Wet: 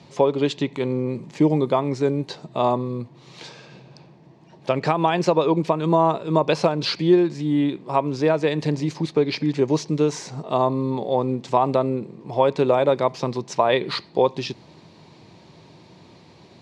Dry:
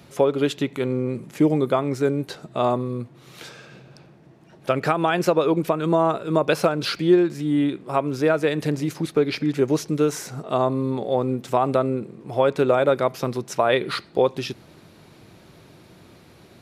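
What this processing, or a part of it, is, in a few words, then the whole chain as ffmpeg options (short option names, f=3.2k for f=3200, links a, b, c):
car door speaker: -af "highpass=80,equalizer=f=160:t=q:w=4:g=3,equalizer=f=950:t=q:w=4:g=7,equalizer=f=1.4k:t=q:w=4:g=-9,equalizer=f=4.4k:t=q:w=4:g=4,lowpass=f=7.2k:w=0.5412,lowpass=f=7.2k:w=1.3066"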